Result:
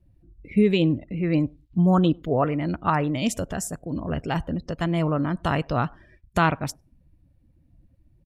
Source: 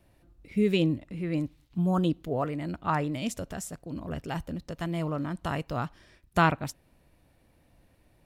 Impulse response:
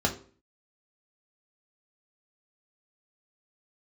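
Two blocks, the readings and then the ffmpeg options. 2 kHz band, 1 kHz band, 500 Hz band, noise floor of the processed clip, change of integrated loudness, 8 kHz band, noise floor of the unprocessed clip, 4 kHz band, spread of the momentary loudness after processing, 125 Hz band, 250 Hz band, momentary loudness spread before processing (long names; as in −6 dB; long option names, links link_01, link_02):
+3.5 dB, +4.5 dB, +6.0 dB, −61 dBFS, +6.0 dB, +7.0 dB, −64 dBFS, +4.5 dB, 10 LU, +6.5 dB, +6.5 dB, 13 LU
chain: -filter_complex "[0:a]alimiter=limit=-16.5dB:level=0:latency=1:release=348,asplit=2[link_01][link_02];[link_02]adelay=100,highpass=300,lowpass=3400,asoftclip=type=hard:threshold=-26.5dB,volume=-25dB[link_03];[link_01][link_03]amix=inputs=2:normalize=0,afftdn=noise_reduction=23:noise_floor=-54,volume=7.5dB"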